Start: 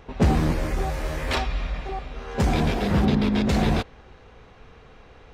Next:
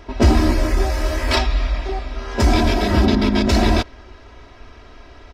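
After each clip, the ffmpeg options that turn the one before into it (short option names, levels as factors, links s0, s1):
-af "equalizer=f=5100:w=3.9:g=7.5,aecho=1:1:3.1:0.88,volume=1.58"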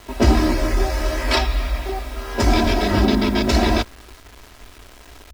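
-filter_complex "[0:a]acrossover=split=210[s0][s1];[s0]flanger=delay=16.5:depth=4.9:speed=0.56[s2];[s1]acrusher=bits=6:mix=0:aa=0.000001[s3];[s2][s3]amix=inputs=2:normalize=0"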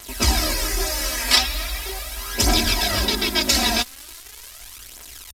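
-af "aresample=32000,aresample=44100,crystalizer=i=10:c=0,aphaser=in_gain=1:out_gain=1:delay=4.4:decay=0.5:speed=0.4:type=triangular,volume=0.316"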